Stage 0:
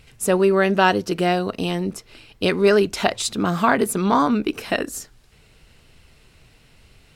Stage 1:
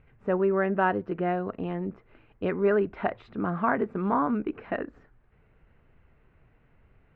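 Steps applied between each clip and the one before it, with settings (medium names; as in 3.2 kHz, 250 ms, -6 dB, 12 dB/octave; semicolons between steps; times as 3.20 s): low-pass 1.9 kHz 24 dB/octave; trim -7.5 dB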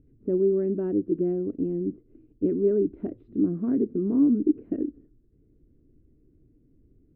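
FFT filter 200 Hz 0 dB, 300 Hz +13 dB, 850 Hz -28 dB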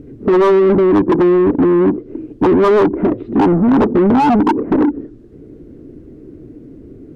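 low-pass that closes with the level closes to 1.4 kHz, closed at -23.5 dBFS; sine folder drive 9 dB, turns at -11.5 dBFS; overdrive pedal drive 24 dB, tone 1.1 kHz, clips at -11 dBFS; trim +5 dB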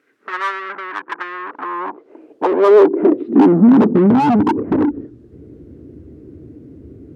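high-pass sweep 1.5 kHz -> 74 Hz, 1.31–4.87 s; trim -3 dB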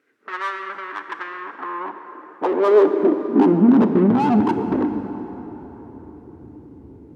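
plate-style reverb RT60 4.4 s, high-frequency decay 0.6×, DRR 7.5 dB; trim -5 dB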